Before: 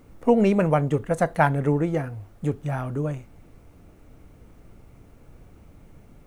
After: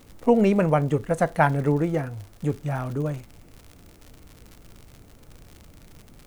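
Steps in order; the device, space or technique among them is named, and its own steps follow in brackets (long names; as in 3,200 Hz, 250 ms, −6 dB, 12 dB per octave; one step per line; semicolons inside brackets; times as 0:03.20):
vinyl LP (surface crackle 110 per second −35 dBFS; white noise bed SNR 41 dB)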